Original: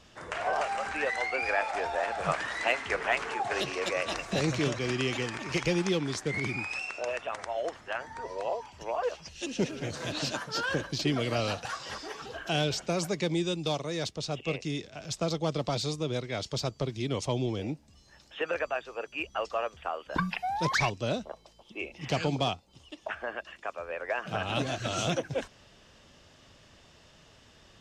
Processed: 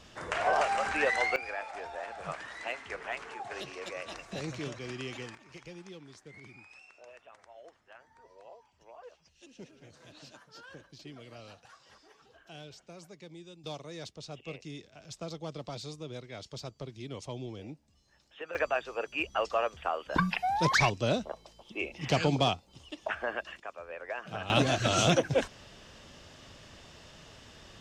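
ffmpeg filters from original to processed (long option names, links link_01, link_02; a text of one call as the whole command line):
ffmpeg -i in.wav -af "asetnsamples=nb_out_samples=441:pad=0,asendcmd='1.36 volume volume -9.5dB;5.35 volume volume -19.5dB;13.64 volume volume -10dB;18.55 volume volume 2dB;23.6 volume volume -6dB;24.5 volume volume 5dB',volume=2.5dB" out.wav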